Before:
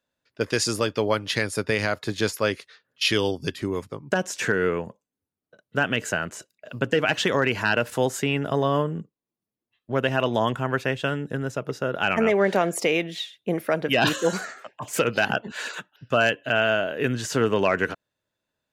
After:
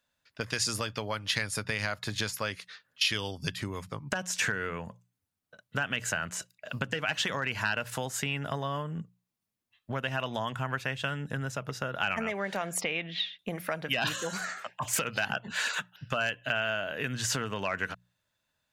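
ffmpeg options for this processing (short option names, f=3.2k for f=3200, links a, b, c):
-filter_complex "[0:a]asettb=1/sr,asplit=3[a][b][c];[a]atrim=end=12.814[d];[b]atrim=start=12.81:end=13.39,asetpts=PTS-STARTPTS,afade=t=in:d=0.004:c=qsin,afade=t=out:st=0.576:d=0.004:c=qsin,lowpass=f=3.9k:w=0.5412,lowpass=f=3.9k:w=1.3066[e];[c]atrim=start=13.386[f];[d][e]acrossfade=d=0.004:c1=hsin:c2=qsin[g];[g][f]acrossfade=d=0.004:c1=qsin:c2=hsin,bandreject=f=60:t=h:w=6,bandreject=f=120:t=h:w=6,bandreject=f=180:t=h:w=6,acompressor=threshold=-30dB:ratio=4,equalizer=f=370:w=0.96:g=-12,volume=4.5dB"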